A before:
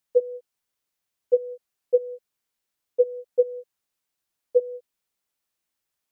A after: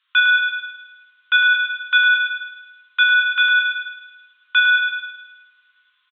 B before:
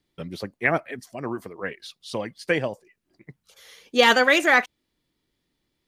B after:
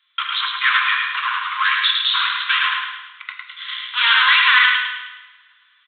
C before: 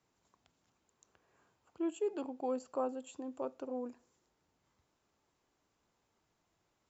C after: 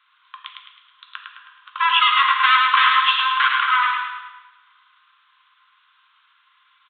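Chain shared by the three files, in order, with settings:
sample leveller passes 3; limiter -16.5 dBFS; soft clip -32 dBFS; rippled Chebyshev high-pass 1000 Hz, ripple 6 dB; feedback echo 0.106 s, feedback 45%, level -4 dB; two-slope reverb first 0.94 s, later 3 s, from -26 dB, DRR 4 dB; downsampling 8000 Hz; match loudness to -16 LUFS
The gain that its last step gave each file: +28.5, +25.0, +31.5 dB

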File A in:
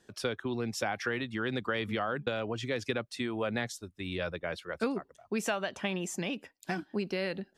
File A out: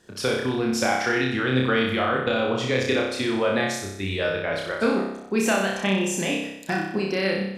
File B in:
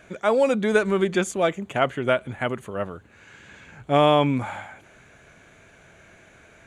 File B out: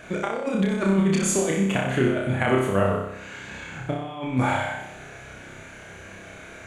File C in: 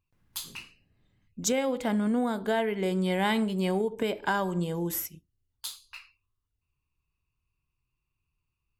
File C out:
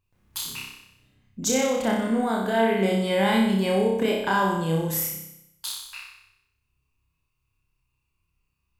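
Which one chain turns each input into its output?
negative-ratio compressor -26 dBFS, ratio -0.5; on a send: flutter echo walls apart 5.3 m, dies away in 0.8 s; on the sum: match loudness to -24 LUFS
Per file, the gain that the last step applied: +7.0, +0.5, +2.5 dB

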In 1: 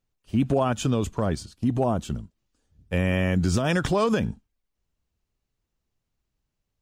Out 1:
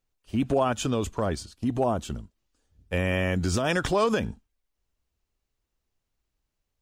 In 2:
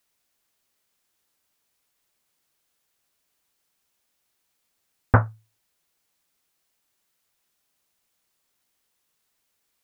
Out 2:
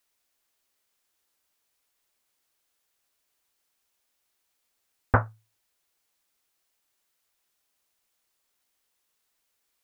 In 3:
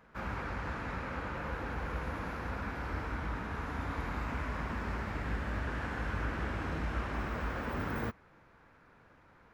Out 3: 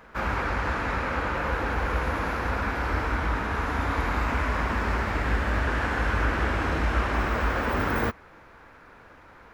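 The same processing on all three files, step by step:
bell 150 Hz -7 dB 1.4 oct; match loudness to -27 LUFS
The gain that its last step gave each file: +0.5, -2.0, +12.0 dB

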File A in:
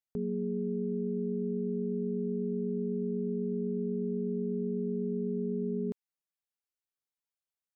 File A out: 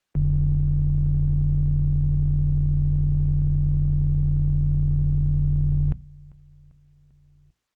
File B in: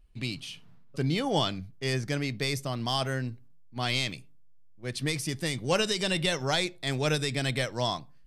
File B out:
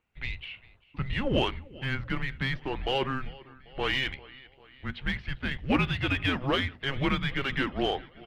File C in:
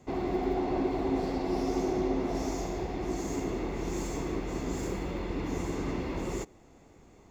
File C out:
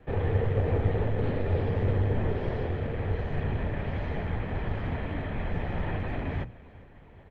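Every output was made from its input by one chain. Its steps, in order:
mistuned SSB -270 Hz 210–3400 Hz; notches 60/120/180/240 Hz; feedback echo 0.395 s, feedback 58%, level -22 dB; in parallel at -5 dB: one-sided clip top -34.5 dBFS, bottom -18.5 dBFS; on the sum: Opus 24 kbps 48000 Hz; normalise peaks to -12 dBFS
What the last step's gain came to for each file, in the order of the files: +11.5, 0.0, +3.0 dB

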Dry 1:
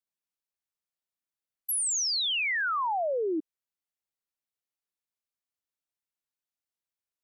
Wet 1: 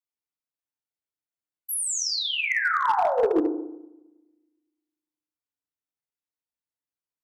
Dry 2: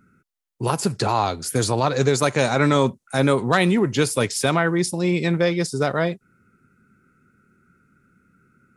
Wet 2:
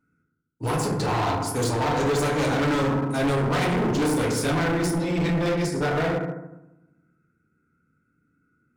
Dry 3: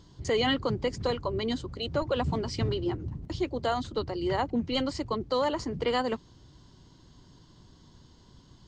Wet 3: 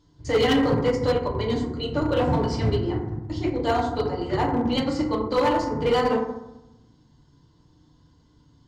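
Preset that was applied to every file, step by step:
FDN reverb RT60 1.2 s, low-frequency decay 1.4×, high-frequency decay 0.3×, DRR -4 dB; overloaded stage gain 16 dB; upward expander 1.5:1, over -41 dBFS; match loudness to -24 LUFS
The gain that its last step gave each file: +1.5, -4.5, +1.5 dB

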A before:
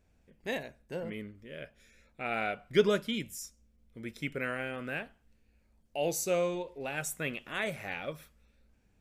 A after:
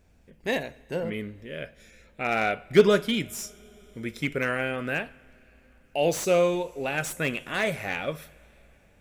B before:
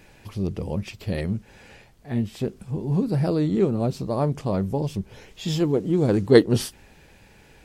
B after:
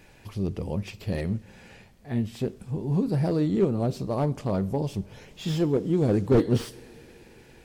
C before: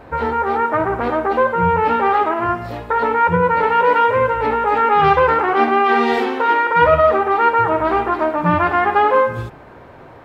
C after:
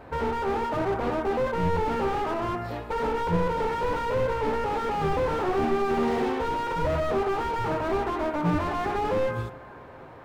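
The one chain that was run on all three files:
two-slope reverb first 0.44 s, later 4.6 s, from -18 dB, DRR 16 dB; slew limiter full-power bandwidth 77 Hz; match loudness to -27 LUFS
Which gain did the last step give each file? +7.5, -2.0, -5.5 dB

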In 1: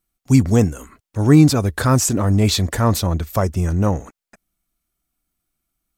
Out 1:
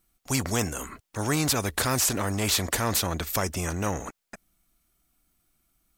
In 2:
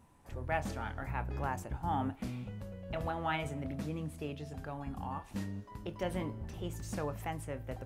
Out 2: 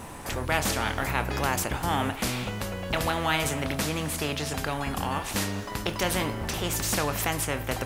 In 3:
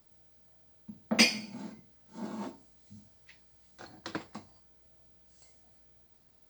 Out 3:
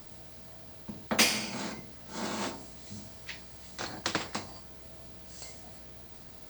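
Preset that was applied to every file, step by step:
spectral compressor 2:1; normalise peaks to -9 dBFS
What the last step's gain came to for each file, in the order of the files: -8.0, +9.0, 0.0 dB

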